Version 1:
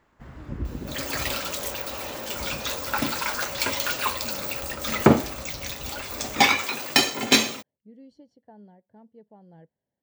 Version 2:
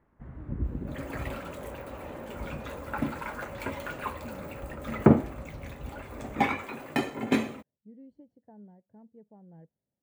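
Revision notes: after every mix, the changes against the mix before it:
master: add EQ curve 180 Hz 0 dB, 2100 Hz -10 dB, 5300 Hz -29 dB, 9500 Hz -17 dB, 16000 Hz -25 dB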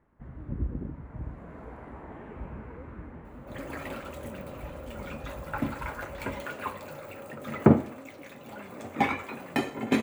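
second sound: entry +2.60 s

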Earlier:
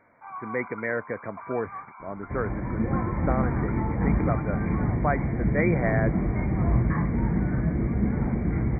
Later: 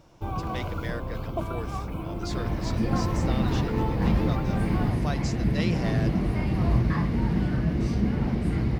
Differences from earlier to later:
speech -8.5 dB; first sound: remove steep high-pass 840 Hz 48 dB/oct; master: remove brick-wall FIR low-pass 2400 Hz

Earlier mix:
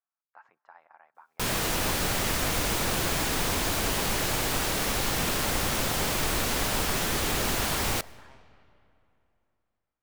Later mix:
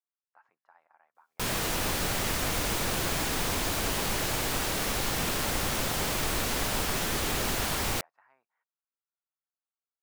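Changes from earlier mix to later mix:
speech -7.5 dB; reverb: off

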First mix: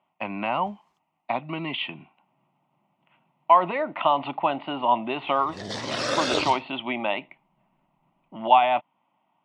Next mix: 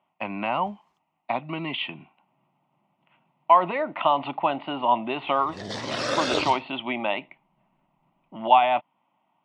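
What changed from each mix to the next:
background: add high shelf 5400 Hz -3.5 dB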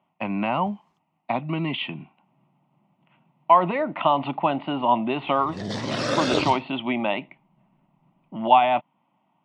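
master: add bell 160 Hz +8.5 dB 2.1 oct

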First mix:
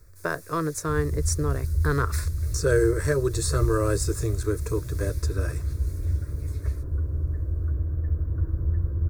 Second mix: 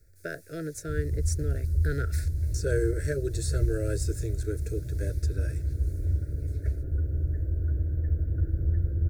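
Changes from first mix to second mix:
speech -6.5 dB; first sound -8.0 dB; master: add Chebyshev band-stop 670–1400 Hz, order 4

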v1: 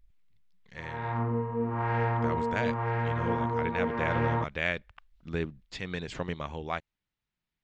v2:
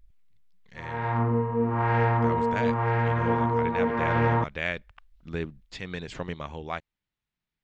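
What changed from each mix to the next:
background +5.0 dB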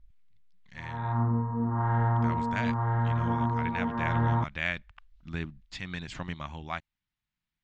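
background: add running mean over 18 samples; master: add bell 460 Hz -14 dB 0.71 oct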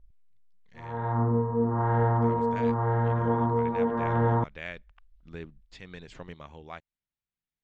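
speech -9.0 dB; master: add bell 460 Hz +14 dB 0.71 oct

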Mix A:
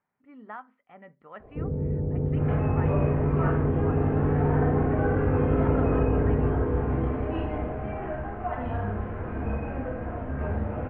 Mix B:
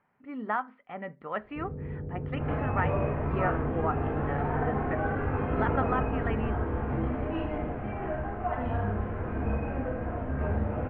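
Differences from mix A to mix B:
speech +10.5 dB; first sound -9.0 dB

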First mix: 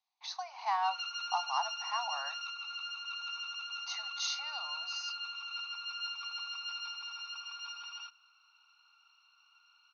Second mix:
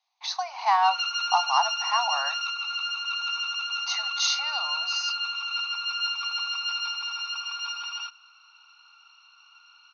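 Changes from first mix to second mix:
speech +10.5 dB; background +11.0 dB

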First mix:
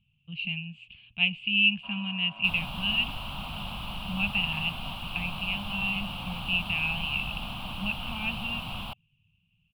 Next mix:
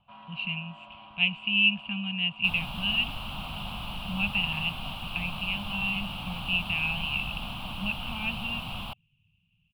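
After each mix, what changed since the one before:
first sound: entry -1.75 s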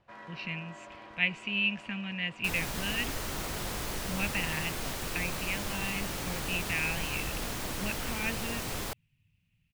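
master: remove EQ curve 120 Hz 0 dB, 200 Hz +4 dB, 410 Hz -21 dB, 750 Hz +2 dB, 1200 Hz +1 dB, 1900 Hz -19 dB, 2800 Hz +11 dB, 6400 Hz -27 dB, 9700 Hz -14 dB

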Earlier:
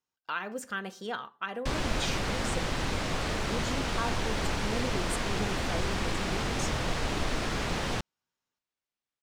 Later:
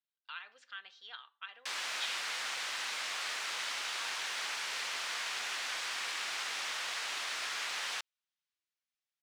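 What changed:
speech: add ladder low-pass 4400 Hz, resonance 50%; master: add HPF 1500 Hz 12 dB/oct

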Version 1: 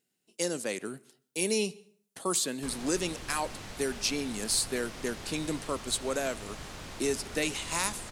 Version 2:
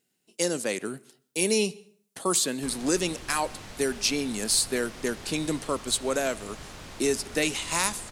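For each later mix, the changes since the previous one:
speech +4.5 dB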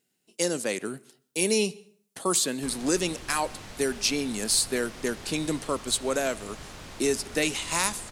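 none

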